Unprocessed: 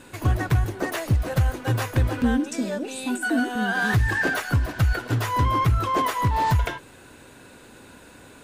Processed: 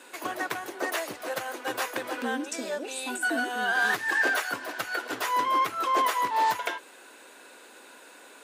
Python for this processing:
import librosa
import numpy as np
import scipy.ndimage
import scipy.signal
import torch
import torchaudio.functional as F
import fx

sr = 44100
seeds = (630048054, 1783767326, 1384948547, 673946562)

y = scipy.signal.sosfilt(scipy.signal.bessel(4, 480.0, 'highpass', norm='mag', fs=sr, output='sos'), x)